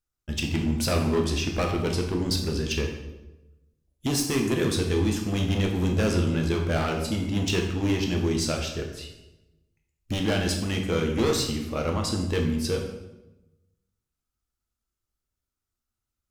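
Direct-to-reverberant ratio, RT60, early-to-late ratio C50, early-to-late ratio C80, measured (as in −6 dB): 1.5 dB, 1.0 s, 5.0 dB, 8.0 dB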